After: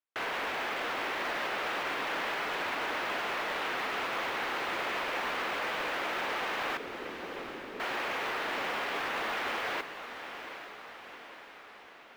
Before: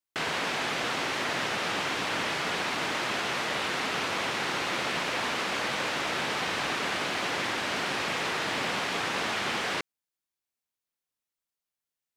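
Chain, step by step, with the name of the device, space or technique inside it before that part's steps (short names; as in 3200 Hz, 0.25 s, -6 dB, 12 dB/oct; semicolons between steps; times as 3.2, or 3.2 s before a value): carbon microphone (BPF 340–2700 Hz; soft clip -28 dBFS, distortion -16 dB; modulation noise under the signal 24 dB); 6.77–7.8 steep low-pass 520 Hz 48 dB/oct; diffused feedback echo 0.814 s, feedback 57%, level -10 dB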